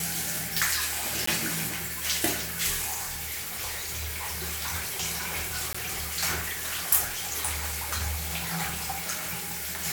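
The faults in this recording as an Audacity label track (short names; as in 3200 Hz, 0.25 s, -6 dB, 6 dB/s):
1.260000	1.270000	gap 14 ms
2.930000	4.430000	clipped -29.5 dBFS
5.730000	5.750000	gap 15 ms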